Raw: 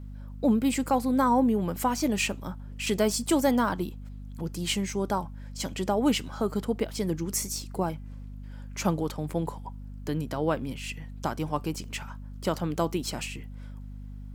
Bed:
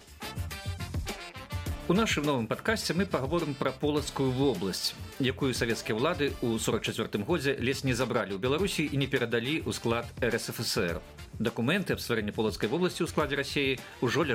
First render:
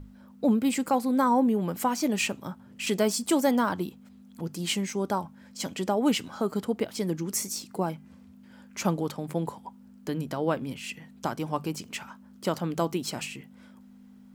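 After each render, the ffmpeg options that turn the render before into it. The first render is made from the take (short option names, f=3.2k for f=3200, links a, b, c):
-af "bandreject=f=50:t=h:w=6,bandreject=f=100:t=h:w=6,bandreject=f=150:t=h:w=6"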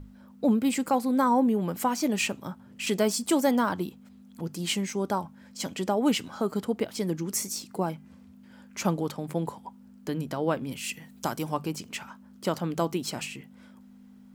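-filter_complex "[0:a]asettb=1/sr,asplit=3[a][b][c];[a]atrim=end=10.724[d];[b]atrim=start=10.72:end=11.54,asetpts=PTS-STARTPTS,afade=t=in:d=0.004:c=qsin,afade=t=out:st=0.816:d=0.004:c=qsin,highshelf=f=5.9k:g=11.5[e];[c]atrim=start=11.536[f];[d][e]acrossfade=d=0.004:c1=hsin:c2=qsin[g];[g][f]acrossfade=d=0.004:c1=qsin:c2=hsin"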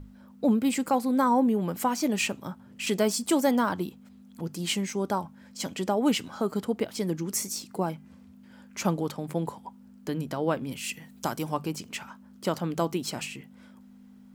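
-af anull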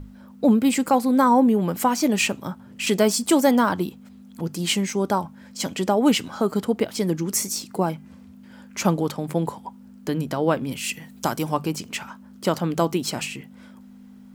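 -af "volume=6dB"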